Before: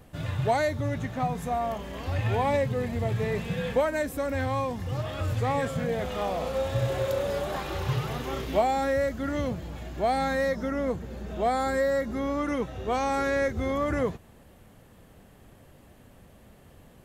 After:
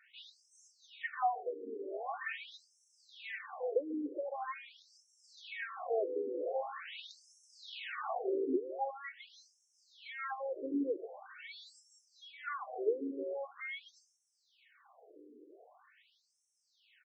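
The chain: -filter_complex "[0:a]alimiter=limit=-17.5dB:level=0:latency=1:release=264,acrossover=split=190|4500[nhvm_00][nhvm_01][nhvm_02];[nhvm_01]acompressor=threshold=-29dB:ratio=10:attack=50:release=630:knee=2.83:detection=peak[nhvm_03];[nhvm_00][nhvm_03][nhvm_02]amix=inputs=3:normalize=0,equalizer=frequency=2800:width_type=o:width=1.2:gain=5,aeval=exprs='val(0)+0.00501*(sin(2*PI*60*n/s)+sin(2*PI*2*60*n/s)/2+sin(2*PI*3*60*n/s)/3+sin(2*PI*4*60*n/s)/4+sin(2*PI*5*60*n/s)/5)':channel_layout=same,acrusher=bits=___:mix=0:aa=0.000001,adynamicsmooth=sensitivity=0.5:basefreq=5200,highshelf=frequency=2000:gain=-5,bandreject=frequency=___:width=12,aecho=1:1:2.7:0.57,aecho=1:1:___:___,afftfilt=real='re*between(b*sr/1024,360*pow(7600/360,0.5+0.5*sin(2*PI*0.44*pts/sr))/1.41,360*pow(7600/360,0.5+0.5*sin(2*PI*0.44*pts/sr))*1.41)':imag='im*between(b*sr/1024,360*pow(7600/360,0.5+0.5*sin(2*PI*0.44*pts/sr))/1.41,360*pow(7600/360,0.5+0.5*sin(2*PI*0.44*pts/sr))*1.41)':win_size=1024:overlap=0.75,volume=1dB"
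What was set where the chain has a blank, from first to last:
9, 7000, 144, 0.1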